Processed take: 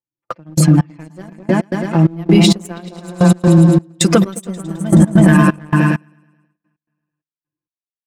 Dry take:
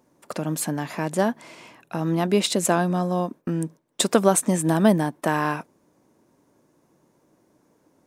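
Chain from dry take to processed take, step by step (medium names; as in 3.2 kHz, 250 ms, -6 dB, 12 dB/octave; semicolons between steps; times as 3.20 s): expander on every frequency bin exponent 1.5; peaking EQ 130 Hz +4.5 dB 0.94 oct; level-controlled noise filter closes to 1.9 kHz, open at -20.5 dBFS; dynamic bell 810 Hz, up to -8 dB, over -37 dBFS, Q 1.4; delay with an opening low-pass 107 ms, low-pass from 200 Hz, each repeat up 2 oct, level 0 dB; gate -47 dBFS, range -25 dB; echo from a far wall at 28 m, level -27 dB; trance gate "xxx..xx......x." 131 bpm -24 dB; comb 5.9 ms, depth 66%; waveshaping leveller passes 1; loudness maximiser +13.5 dB; trim -1 dB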